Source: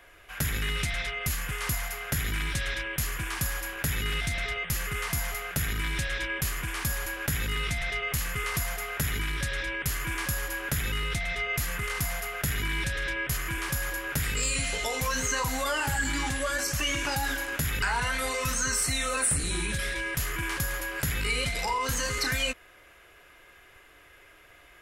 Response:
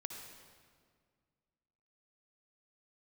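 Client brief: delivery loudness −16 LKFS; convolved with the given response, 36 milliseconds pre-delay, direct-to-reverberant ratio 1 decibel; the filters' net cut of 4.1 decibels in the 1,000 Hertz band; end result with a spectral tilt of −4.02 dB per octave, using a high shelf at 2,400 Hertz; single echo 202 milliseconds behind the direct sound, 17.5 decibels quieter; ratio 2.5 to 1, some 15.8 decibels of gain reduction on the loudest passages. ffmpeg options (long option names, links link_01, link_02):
-filter_complex "[0:a]equalizer=frequency=1000:width_type=o:gain=-4,highshelf=frequency=2400:gain=-5.5,acompressor=threshold=-52dB:ratio=2.5,aecho=1:1:202:0.133,asplit=2[link_01][link_02];[1:a]atrim=start_sample=2205,adelay=36[link_03];[link_02][link_03]afir=irnorm=-1:irlink=0,volume=1dB[link_04];[link_01][link_04]amix=inputs=2:normalize=0,volume=28.5dB"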